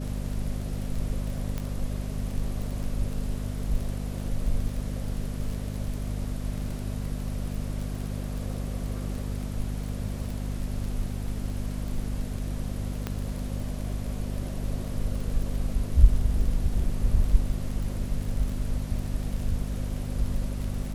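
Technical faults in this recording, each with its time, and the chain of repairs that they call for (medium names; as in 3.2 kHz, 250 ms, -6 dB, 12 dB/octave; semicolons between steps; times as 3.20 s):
crackle 22 per s -32 dBFS
hum 50 Hz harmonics 5 -32 dBFS
1.58 s: pop -18 dBFS
13.07 s: pop -16 dBFS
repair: de-click; de-hum 50 Hz, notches 5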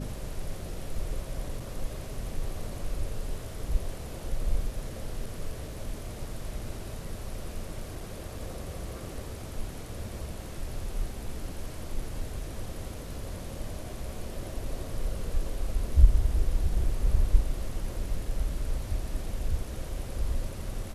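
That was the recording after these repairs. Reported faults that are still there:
1.58 s: pop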